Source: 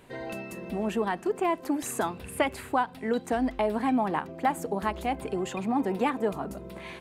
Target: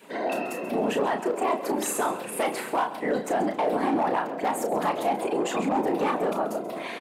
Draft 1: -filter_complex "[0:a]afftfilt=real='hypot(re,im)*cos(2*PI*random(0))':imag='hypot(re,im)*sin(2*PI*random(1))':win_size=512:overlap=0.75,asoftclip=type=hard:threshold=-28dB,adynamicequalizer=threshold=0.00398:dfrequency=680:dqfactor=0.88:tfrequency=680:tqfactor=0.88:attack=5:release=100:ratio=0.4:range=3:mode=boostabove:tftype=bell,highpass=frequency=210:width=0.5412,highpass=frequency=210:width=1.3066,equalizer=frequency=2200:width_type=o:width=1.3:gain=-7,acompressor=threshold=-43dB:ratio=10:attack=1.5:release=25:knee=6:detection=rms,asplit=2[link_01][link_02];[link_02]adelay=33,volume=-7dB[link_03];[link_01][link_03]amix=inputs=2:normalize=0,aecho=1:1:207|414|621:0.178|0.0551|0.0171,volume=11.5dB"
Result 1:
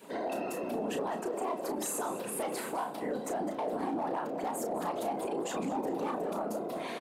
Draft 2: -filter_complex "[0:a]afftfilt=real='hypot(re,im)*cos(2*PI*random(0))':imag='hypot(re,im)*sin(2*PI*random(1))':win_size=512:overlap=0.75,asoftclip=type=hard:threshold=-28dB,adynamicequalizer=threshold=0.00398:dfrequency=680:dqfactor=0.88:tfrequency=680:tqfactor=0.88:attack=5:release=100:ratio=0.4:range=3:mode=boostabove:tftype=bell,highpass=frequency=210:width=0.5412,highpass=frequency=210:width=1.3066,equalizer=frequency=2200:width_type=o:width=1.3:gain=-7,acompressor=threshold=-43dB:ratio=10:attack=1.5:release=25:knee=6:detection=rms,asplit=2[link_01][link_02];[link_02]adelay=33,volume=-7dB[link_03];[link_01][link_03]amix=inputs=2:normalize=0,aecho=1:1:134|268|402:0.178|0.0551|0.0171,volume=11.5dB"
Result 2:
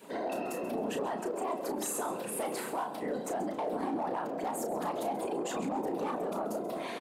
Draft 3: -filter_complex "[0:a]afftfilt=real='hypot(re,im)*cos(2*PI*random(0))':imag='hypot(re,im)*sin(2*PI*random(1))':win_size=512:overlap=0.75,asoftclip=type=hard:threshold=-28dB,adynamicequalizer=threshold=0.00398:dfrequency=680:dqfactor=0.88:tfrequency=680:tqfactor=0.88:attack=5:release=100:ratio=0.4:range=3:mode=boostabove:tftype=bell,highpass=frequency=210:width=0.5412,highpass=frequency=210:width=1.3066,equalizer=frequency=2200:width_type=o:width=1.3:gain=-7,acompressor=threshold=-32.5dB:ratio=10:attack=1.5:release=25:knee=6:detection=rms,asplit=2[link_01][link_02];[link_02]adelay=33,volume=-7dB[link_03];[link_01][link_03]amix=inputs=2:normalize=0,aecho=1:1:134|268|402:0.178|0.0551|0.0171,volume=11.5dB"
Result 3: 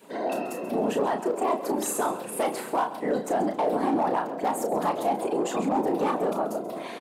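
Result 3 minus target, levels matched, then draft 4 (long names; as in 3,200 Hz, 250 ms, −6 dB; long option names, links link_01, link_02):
2,000 Hz band −4.5 dB
-filter_complex "[0:a]afftfilt=real='hypot(re,im)*cos(2*PI*random(0))':imag='hypot(re,im)*sin(2*PI*random(1))':win_size=512:overlap=0.75,asoftclip=type=hard:threshold=-28dB,adynamicequalizer=threshold=0.00398:dfrequency=680:dqfactor=0.88:tfrequency=680:tqfactor=0.88:attack=5:release=100:ratio=0.4:range=3:mode=boostabove:tftype=bell,highpass=frequency=210:width=0.5412,highpass=frequency=210:width=1.3066,acompressor=threshold=-32.5dB:ratio=10:attack=1.5:release=25:knee=6:detection=rms,asplit=2[link_01][link_02];[link_02]adelay=33,volume=-7dB[link_03];[link_01][link_03]amix=inputs=2:normalize=0,aecho=1:1:134|268|402:0.178|0.0551|0.0171,volume=11.5dB"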